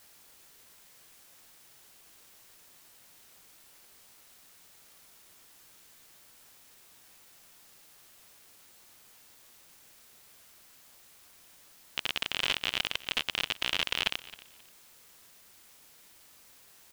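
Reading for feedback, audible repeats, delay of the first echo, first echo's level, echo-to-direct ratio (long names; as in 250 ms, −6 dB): 22%, 2, 266 ms, −19.0 dB, −19.0 dB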